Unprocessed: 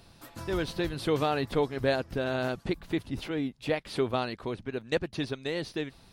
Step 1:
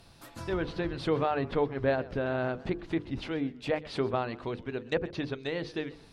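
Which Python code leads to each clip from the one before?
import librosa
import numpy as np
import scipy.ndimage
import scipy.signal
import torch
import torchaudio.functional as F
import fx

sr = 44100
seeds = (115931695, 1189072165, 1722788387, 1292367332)

y = fx.env_lowpass_down(x, sr, base_hz=2100.0, full_db=-26.0)
y = fx.hum_notches(y, sr, base_hz=50, count=10)
y = fx.echo_warbled(y, sr, ms=129, feedback_pct=36, rate_hz=2.8, cents=147, wet_db=-20)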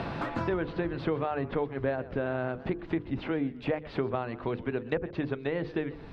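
y = scipy.signal.sosfilt(scipy.signal.butter(2, 2500.0, 'lowpass', fs=sr, output='sos'), x)
y = fx.band_squash(y, sr, depth_pct=100)
y = y * librosa.db_to_amplitude(-1.0)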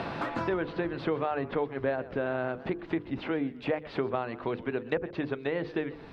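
y = fx.low_shelf(x, sr, hz=140.0, db=-10.5)
y = y * librosa.db_to_amplitude(1.5)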